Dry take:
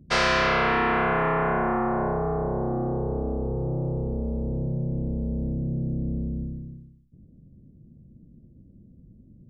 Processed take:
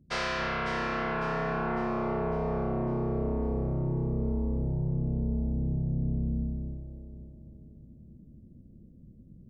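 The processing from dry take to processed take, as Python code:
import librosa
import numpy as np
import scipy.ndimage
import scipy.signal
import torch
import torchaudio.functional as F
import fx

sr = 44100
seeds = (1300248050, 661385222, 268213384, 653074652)

y = fx.echo_alternate(x, sr, ms=276, hz=1600.0, feedback_pct=63, wet_db=-4.0)
y = fx.rider(y, sr, range_db=4, speed_s=0.5)
y = fx.lowpass(y, sr, hz=4800.0, slope=12, at=(4.89, 5.99))
y = y * librosa.db_to_amplitude(-6.5)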